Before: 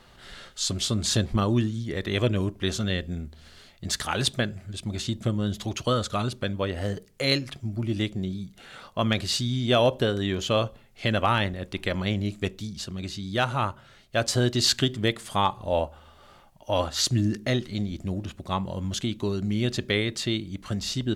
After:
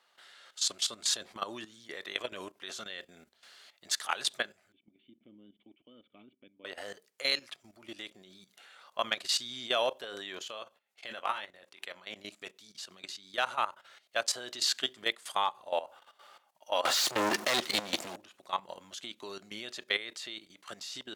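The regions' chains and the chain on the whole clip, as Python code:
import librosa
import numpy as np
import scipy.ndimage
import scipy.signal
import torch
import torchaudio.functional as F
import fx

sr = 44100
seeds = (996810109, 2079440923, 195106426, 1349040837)

y = fx.chain(x, sr, fx.formant_cascade(vowel='i'),
    fx.peak_eq(hz=3200.0, db=-9.5, octaves=1.1), at=(4.72, 6.65))
y = fx.chain(y, sr, fx.doubler(ms=23.0, db=-10.5),
    fx.level_steps(step_db=13), at=(10.41, 12.16))
y = fx.chain(y, sr, fx.leveller(passes=5),
    fx.band_squash(depth_pct=40), at=(16.85, 18.16))
y = scipy.signal.sosfilt(scipy.signal.butter(2, 700.0, 'highpass', fs=sr, output='sos'), y)
y = fx.level_steps(y, sr, step_db=14)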